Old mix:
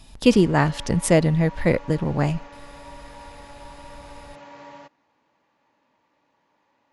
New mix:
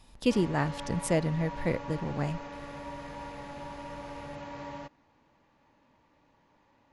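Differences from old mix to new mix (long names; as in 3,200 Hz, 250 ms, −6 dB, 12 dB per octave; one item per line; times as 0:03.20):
speech −10.0 dB
background: remove high-pass filter 360 Hz 6 dB per octave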